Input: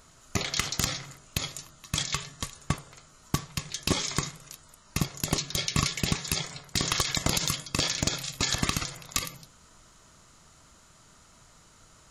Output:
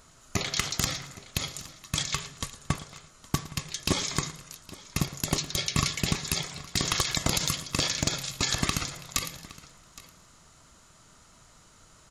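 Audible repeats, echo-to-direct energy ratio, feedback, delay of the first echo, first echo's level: 4, −14.5 dB, repeats not evenly spaced, 113 ms, −17.5 dB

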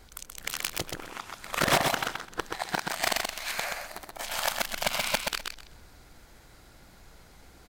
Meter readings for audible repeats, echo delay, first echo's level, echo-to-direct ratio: 3, 128 ms, −4.0 dB, −4.0 dB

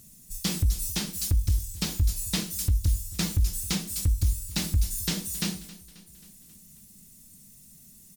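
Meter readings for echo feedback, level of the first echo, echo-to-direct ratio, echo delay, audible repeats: 57%, −19.0 dB, −17.5 dB, 268 ms, 4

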